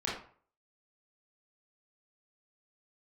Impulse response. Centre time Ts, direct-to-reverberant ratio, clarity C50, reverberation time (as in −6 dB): 44 ms, −6.5 dB, 3.0 dB, 0.45 s